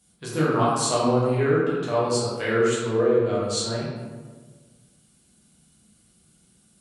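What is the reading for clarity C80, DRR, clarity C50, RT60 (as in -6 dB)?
1.5 dB, -8.5 dB, -1.0 dB, 1.5 s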